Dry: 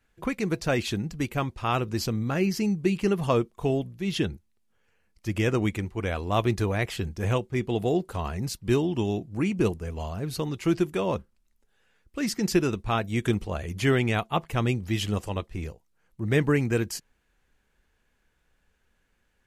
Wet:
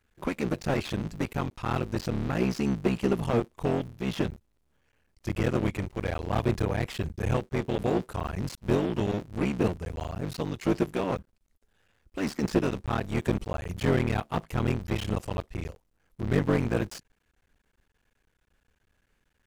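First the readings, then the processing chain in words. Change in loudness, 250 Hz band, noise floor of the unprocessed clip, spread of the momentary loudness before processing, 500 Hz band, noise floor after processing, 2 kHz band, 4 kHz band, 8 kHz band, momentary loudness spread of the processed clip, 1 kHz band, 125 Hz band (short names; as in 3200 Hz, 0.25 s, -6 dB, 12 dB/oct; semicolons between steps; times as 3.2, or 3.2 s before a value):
-2.0 dB, -2.0 dB, -71 dBFS, 9 LU, -2.0 dB, -74 dBFS, -4.0 dB, -5.5 dB, -7.0 dB, 8 LU, -2.5 dB, -2.0 dB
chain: cycle switcher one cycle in 3, muted; slew limiter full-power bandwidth 64 Hz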